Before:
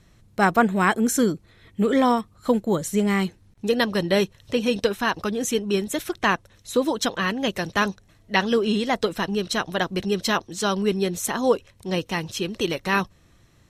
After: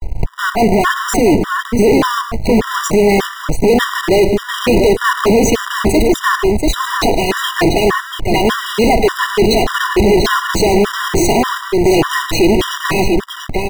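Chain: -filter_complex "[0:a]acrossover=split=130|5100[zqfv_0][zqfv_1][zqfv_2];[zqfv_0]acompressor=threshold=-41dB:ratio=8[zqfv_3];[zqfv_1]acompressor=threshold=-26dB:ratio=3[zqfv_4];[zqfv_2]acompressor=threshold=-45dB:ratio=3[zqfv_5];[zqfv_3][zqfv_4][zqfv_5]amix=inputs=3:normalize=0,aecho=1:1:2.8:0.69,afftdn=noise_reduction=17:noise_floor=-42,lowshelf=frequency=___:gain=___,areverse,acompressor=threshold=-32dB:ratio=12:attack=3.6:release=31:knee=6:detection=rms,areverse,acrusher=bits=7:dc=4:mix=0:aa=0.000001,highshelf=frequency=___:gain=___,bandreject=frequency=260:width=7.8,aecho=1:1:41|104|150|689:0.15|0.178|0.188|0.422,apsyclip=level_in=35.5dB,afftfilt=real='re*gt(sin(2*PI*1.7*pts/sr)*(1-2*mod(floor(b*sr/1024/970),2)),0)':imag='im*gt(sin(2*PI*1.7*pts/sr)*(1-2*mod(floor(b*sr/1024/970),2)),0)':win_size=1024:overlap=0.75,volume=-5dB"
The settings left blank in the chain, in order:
73, 11, 2300, -11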